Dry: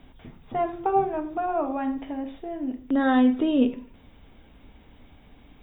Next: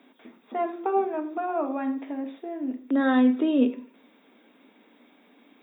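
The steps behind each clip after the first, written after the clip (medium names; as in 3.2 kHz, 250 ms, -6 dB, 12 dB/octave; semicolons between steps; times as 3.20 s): steep high-pass 220 Hz 48 dB/octave; peaking EQ 790 Hz -4 dB 0.39 oct; band-stop 3 kHz, Q 11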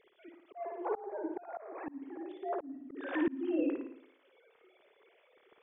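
formants replaced by sine waves; flutter echo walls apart 9.6 m, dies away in 0.57 s; slow attack 624 ms; trim -2.5 dB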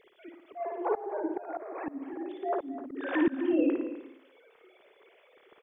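delay 254 ms -13.5 dB; trim +5.5 dB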